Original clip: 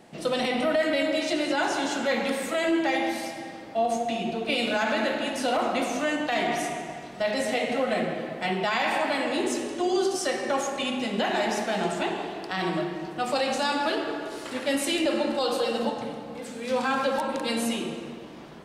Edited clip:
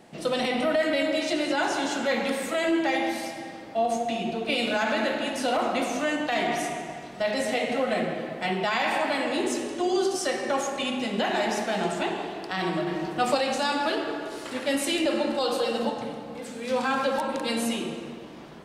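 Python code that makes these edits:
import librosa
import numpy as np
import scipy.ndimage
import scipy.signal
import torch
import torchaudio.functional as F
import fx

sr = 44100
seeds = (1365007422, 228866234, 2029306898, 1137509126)

y = fx.edit(x, sr, fx.clip_gain(start_s=12.87, length_s=0.48, db=4.0), tone=tone)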